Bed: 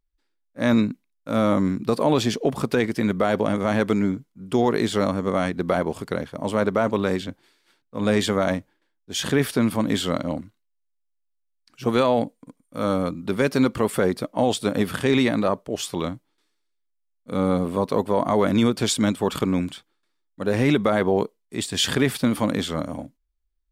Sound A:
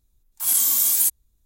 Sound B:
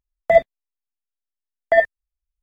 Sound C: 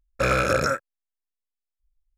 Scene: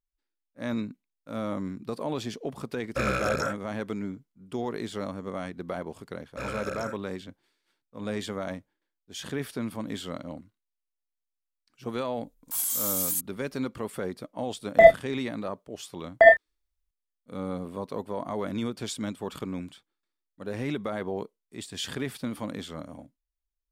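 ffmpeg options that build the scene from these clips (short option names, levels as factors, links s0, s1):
-filter_complex "[3:a]asplit=2[s0][s1];[0:a]volume=0.251[s2];[1:a]alimiter=level_in=4.47:limit=0.891:release=50:level=0:latency=1[s3];[2:a]asplit=2[s4][s5];[s5]adelay=29,volume=0.447[s6];[s4][s6]amix=inputs=2:normalize=0[s7];[s0]atrim=end=2.17,asetpts=PTS-STARTPTS,volume=0.473,afade=t=in:d=0.004:c=hsin,afade=t=out:st=2.166:d=0.004:c=hsin,adelay=2760[s8];[s1]atrim=end=2.17,asetpts=PTS-STARTPTS,volume=0.2,afade=t=in:d=0.004:c=hsin,afade=t=out:st=2.166:d=0.004:c=hsin,adelay=6170[s9];[s3]atrim=end=1.45,asetpts=PTS-STARTPTS,volume=0.133,afade=t=in:d=0.004:c=hsin,afade=t=out:st=1.446:d=0.004:c=hsin,adelay=12110[s10];[s7]atrim=end=2.42,asetpts=PTS-STARTPTS,afade=t=in:d=0.004:c=hsin,afade=t=out:st=2.416:d=0.004:c=hsin,adelay=14490[s11];[s2][s8][s9][s10][s11]amix=inputs=5:normalize=0"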